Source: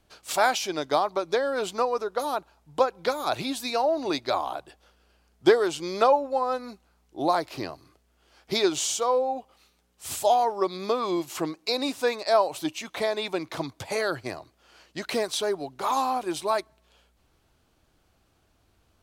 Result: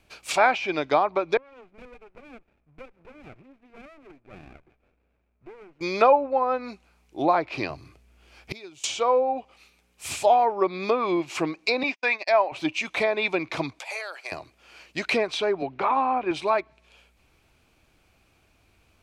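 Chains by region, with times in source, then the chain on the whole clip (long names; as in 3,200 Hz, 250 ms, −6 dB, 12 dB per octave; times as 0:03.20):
0:01.37–0:05.81: downward compressor 2 to 1, threshold −49 dBFS + transistor ladder low-pass 1,400 Hz, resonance 50% + windowed peak hold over 33 samples
0:07.70–0:08.84: parametric band 92 Hz +10 dB 2.3 octaves + gate with flip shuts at −21 dBFS, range −25 dB
0:11.83–0:12.52: noise gate −36 dBFS, range −48 dB + loudspeaker in its box 360–5,800 Hz, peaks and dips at 470 Hz −10 dB, 1,300 Hz −5 dB, 2,000 Hz +5 dB, 4,000 Hz −6 dB
0:13.79–0:14.32: high-pass filter 570 Hz 24 dB per octave + downward compressor 2.5 to 1, threshold −40 dBFS
0:15.62–0:16.31: low-pass filter 2,500 Hz + multiband upward and downward compressor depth 40%
whole clip: treble cut that deepens with the level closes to 2,100 Hz, closed at −22.5 dBFS; parametric band 2,400 Hz +12 dB 0.33 octaves; level +2.5 dB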